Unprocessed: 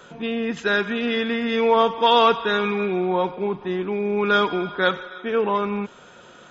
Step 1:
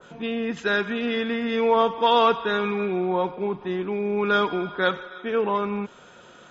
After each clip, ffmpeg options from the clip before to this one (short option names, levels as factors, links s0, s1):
-af "adynamicequalizer=threshold=0.02:dfrequency=1800:dqfactor=0.7:tfrequency=1800:tqfactor=0.7:attack=5:release=100:ratio=0.375:range=1.5:mode=cutabove:tftype=highshelf,volume=0.794"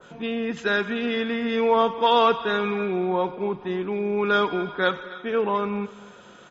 -af "aecho=1:1:256|512|768:0.106|0.035|0.0115"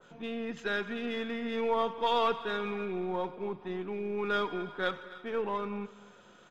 -af "aeval=exprs='if(lt(val(0),0),0.708*val(0),val(0))':c=same,volume=0.398"